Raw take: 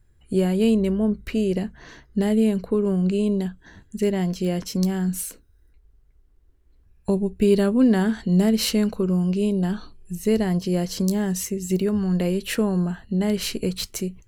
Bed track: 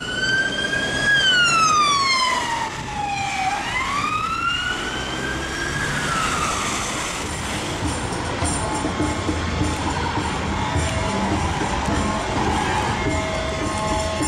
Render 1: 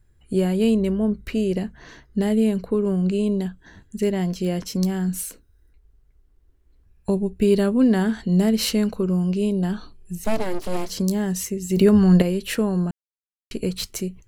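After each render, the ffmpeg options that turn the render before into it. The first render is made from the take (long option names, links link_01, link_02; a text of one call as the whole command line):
ffmpeg -i in.wav -filter_complex "[0:a]asettb=1/sr,asplit=3[link_01][link_02][link_03];[link_01]atrim=end=10.244[link_04];[link_02]atrim=start=10.24:end=10.9,asetpts=PTS-STARTPTS,afade=type=in:duration=0.004:curve=qsin,afade=type=out:start_time=0.656:duration=0.004:curve=qsin,aeval=exprs='abs(val(0))':channel_layout=same[link_05];[link_03]atrim=start=10.896[link_06];[link_04][link_05]acrossfade=duration=0.004:curve1=hsin:curve2=qsin[link_07];[link_07][link_06]acrossfade=duration=0.004:curve1=qsin:curve2=hsin,asplit=5[link_08][link_09][link_10][link_11][link_12];[link_08]atrim=end=11.772[link_13];[link_09]atrim=start=11.768:end=12.222,asetpts=PTS-STARTPTS,volume=8dB[link_14];[link_10]atrim=start=12.218:end=12.91,asetpts=PTS-STARTPTS,afade=type=out:start_time=0.688:duration=0.004:curve=hsin[link_15];[link_11]atrim=start=12.91:end=13.51,asetpts=PTS-STARTPTS,volume=0[link_16];[link_12]atrim=start=13.51,asetpts=PTS-STARTPTS,afade=type=in:duration=0.004:curve=hsin[link_17];[link_13][link_14]acrossfade=duration=0.004:curve1=hsin:curve2=hsin[link_18];[link_15][link_16][link_17]concat=n=3:v=0:a=1[link_19];[link_18][link_19]acrossfade=duration=0.004:curve1=hsin:curve2=hsin" out.wav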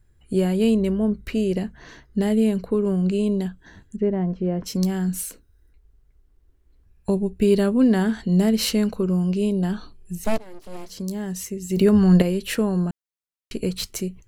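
ffmpeg -i in.wav -filter_complex "[0:a]asettb=1/sr,asplit=3[link_01][link_02][link_03];[link_01]atrim=end=3.964[link_04];[link_02]atrim=start=3.96:end=4.64,asetpts=PTS-STARTPTS,afade=type=in:duration=0.004:curve=qsin,afade=type=out:start_time=0.676:duration=0.004:curve=qsin,lowpass=1200[link_05];[link_03]atrim=start=4.636[link_06];[link_04][link_05]acrossfade=duration=0.004:curve1=hsin:curve2=qsin[link_07];[link_07][link_06]acrossfade=duration=0.004:curve1=qsin:curve2=hsin,asplit=2[link_08][link_09];[link_08]atrim=end=10.38,asetpts=PTS-STARTPTS,afade=type=out:start_time=10.376:duration=0.004:curve=hsin:silence=0.1[link_10];[link_09]atrim=start=10.38,asetpts=PTS-STARTPTS,afade=type=in:duration=1.78:silence=0.1[link_11];[link_10][link_11]concat=n=2:v=0:a=1" out.wav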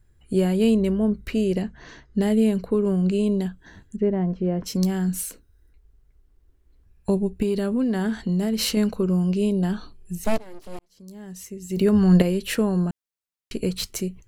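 ffmpeg -i in.wav -filter_complex "[0:a]asettb=1/sr,asplit=3[link_01][link_02][link_03];[link_01]atrim=end=1.624[link_04];[link_02]atrim=start=1.62:end=2.21,asetpts=PTS-STARTPTS,afade=type=in:duration=0.004:curve=qsin,afade=type=out:start_time=0.586:duration=0.004:curve=qsin,lowpass=frequency=7900:width=0.5412,lowpass=frequency=7900:width=1.3066[link_05];[link_03]atrim=start=2.206[link_06];[link_04][link_05]acrossfade=duration=0.004:curve1=hsin:curve2=qsin[link_07];[link_07][link_06]acrossfade=duration=0.004:curve1=qsin:curve2=hsin,asettb=1/sr,asplit=3[link_08][link_09][link_10];[link_08]atrim=end=7.424[link_11];[link_09]atrim=start=7.42:end=8.77,asetpts=PTS-STARTPTS,afade=type=in:duration=0.004:curve=qsin,afade=type=out:start_time=1.346:duration=0.004:curve=qsin,acompressor=threshold=-19dB:ratio=6:attack=3.2:release=140:knee=1:detection=peak[link_12];[link_10]atrim=start=8.766[link_13];[link_11][link_12]acrossfade=duration=0.004:curve1=hsin:curve2=qsin[link_14];[link_14][link_13]acrossfade=duration=0.004:curve1=qsin:curve2=hsin,asplit=2[link_15][link_16];[link_15]atrim=end=10.79,asetpts=PTS-STARTPTS,afade=type=out:start_time=10.786:duration=0.004:curve=hsin[link_17];[link_16]atrim=start=10.79,asetpts=PTS-STARTPTS,afade=type=in:duration=1.46[link_18];[link_17][link_18]concat=n=2:v=0:a=1" out.wav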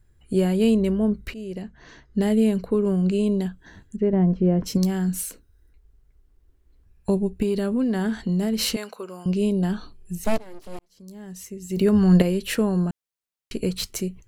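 ffmpeg -i in.wav -filter_complex "[0:a]asettb=1/sr,asplit=3[link_01][link_02][link_03];[link_01]atrim=end=4.134[link_04];[link_02]atrim=start=4.13:end=4.78,asetpts=PTS-STARTPTS,afade=type=in:duration=0.004:curve=qsin,afade=type=out:start_time=0.646:duration=0.004:curve=qsin,lowshelf=frequency=430:gain=6[link_05];[link_03]atrim=start=4.776[link_06];[link_04][link_05]acrossfade=duration=0.004:curve1=hsin:curve2=qsin[link_07];[link_07][link_06]acrossfade=duration=0.004:curve1=qsin:curve2=hsin,asettb=1/sr,asplit=3[link_08][link_09][link_10];[link_08]atrim=end=8.764[link_11];[link_09]atrim=start=8.76:end=9.26,asetpts=PTS-STARTPTS,afade=type=in:duration=0.004:curve=qsin,afade=type=out:start_time=0.496:duration=0.004:curve=qsin,highpass=680[link_12];[link_10]atrim=start=9.256[link_13];[link_11][link_12]acrossfade=duration=0.004:curve1=hsin:curve2=qsin[link_14];[link_14][link_13]acrossfade=duration=0.004:curve1=qsin:curve2=hsin,asplit=2[link_15][link_16];[link_15]atrim=end=1.34,asetpts=PTS-STARTPTS,afade=type=out:start_time=1.336:duration=0.004:curve=hsin:silence=0.158489[link_17];[link_16]atrim=start=1.34,asetpts=PTS-STARTPTS,afade=type=in:duration=0.88:silence=0.158489[link_18];[link_17][link_18]concat=n=2:v=0:a=1" out.wav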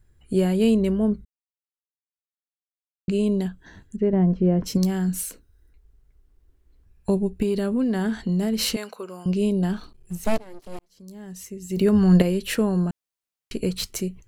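ffmpeg -i in.wav -filter_complex "[0:a]asettb=1/sr,asplit=3[link_01][link_02][link_03];[link_01]atrim=end=9.684[link_04];[link_02]atrim=start=9.68:end=10.72,asetpts=PTS-STARTPTS,afade=type=in:duration=0.004:curve=qsin,afade=type=out:start_time=1.036:duration=0.004:curve=qsin,aeval=exprs='sgn(val(0))*max(abs(val(0))-0.00316,0)':channel_layout=same[link_05];[link_03]atrim=start=10.716[link_06];[link_04][link_05]acrossfade=duration=0.004:curve1=hsin:curve2=qsin[link_07];[link_07][link_06]acrossfade=duration=0.004:curve1=qsin:curve2=hsin,asplit=3[link_08][link_09][link_10];[link_08]atrim=end=1.25,asetpts=PTS-STARTPTS,afade=type=out:start_time=1.246:duration=0.004:curve=hsin[link_11];[link_09]atrim=start=1.25:end=3.08,asetpts=PTS-STARTPTS,volume=0[link_12];[link_10]atrim=start=3.08,asetpts=PTS-STARTPTS,afade=type=in:duration=0.004:curve=hsin[link_13];[link_11][link_12][link_13]concat=n=3:v=0:a=1" out.wav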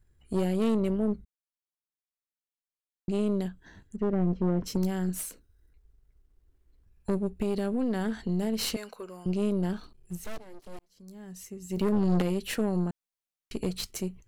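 ffmpeg -i in.wav -af "aeval=exprs='if(lt(val(0),0),0.708*val(0),val(0))':channel_layout=same,aeval=exprs='(tanh(12.6*val(0)+0.7)-tanh(0.7))/12.6':channel_layout=same" out.wav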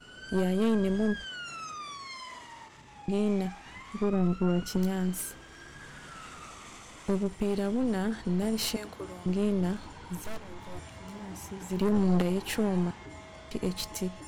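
ffmpeg -i in.wav -i bed.wav -filter_complex "[1:a]volume=-24dB[link_01];[0:a][link_01]amix=inputs=2:normalize=0" out.wav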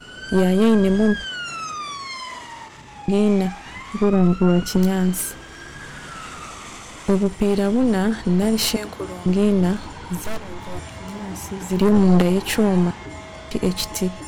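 ffmpeg -i in.wav -af "volume=10.5dB" out.wav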